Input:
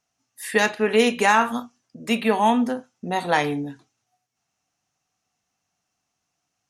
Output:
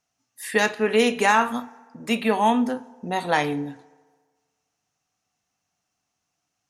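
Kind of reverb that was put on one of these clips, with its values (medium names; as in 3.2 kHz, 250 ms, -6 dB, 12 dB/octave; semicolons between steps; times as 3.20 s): FDN reverb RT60 1.5 s, low-frequency decay 0.9×, high-frequency decay 0.6×, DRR 19 dB; trim -1 dB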